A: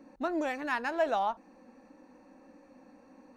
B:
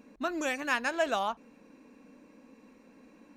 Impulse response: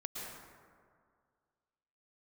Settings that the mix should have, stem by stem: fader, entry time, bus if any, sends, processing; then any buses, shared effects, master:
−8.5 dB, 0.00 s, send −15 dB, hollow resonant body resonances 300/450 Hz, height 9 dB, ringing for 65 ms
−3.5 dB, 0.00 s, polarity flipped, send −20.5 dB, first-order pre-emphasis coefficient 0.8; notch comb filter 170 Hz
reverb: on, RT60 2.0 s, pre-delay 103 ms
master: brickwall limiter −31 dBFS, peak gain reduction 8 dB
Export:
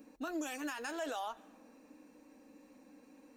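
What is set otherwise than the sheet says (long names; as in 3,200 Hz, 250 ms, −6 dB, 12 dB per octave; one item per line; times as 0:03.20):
stem A: send off
stem B −3.5 dB → +3.0 dB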